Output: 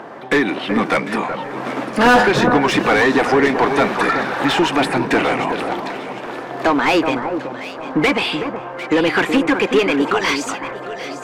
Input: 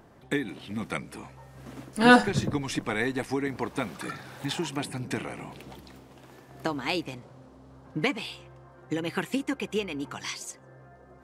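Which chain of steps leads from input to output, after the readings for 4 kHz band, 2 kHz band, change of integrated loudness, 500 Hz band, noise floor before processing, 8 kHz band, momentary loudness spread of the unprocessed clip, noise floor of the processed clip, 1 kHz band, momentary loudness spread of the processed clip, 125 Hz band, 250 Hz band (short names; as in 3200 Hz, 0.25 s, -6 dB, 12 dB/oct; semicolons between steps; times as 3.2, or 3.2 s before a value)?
+12.0 dB, +12.5 dB, +12.0 dB, +14.5 dB, -53 dBFS, +8.0 dB, 18 LU, -30 dBFS, +14.5 dB, 13 LU, +7.0 dB, +11.5 dB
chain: Bessel high-pass 190 Hz, order 2; high shelf 4900 Hz -8 dB; overdrive pedal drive 31 dB, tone 1600 Hz, clips at -6.5 dBFS; echo with dull and thin repeats by turns 0.375 s, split 1600 Hz, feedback 56%, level -7 dB; gain +3 dB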